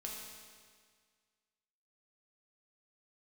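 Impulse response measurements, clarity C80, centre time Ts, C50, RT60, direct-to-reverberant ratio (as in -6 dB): 2.5 dB, 86 ms, 1.0 dB, 1.8 s, -2.5 dB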